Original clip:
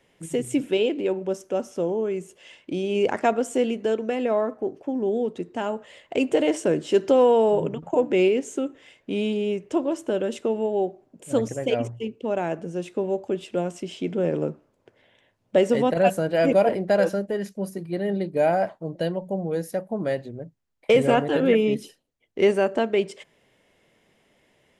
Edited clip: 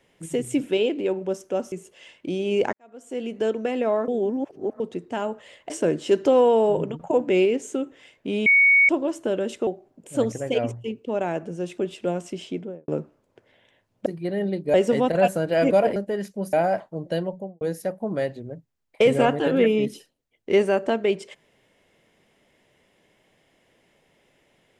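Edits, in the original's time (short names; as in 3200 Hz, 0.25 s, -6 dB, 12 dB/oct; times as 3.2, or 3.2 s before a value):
1.72–2.16 cut
3.17–3.87 fade in quadratic
4.52–5.24 reverse
6.14–6.53 cut
9.29–9.72 bleep 2230 Hz -12.5 dBFS
10.5–10.83 cut
12.94–13.28 cut
13.9–14.38 studio fade out
16.78–17.17 cut
17.74–18.42 move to 15.56
19.17–19.5 studio fade out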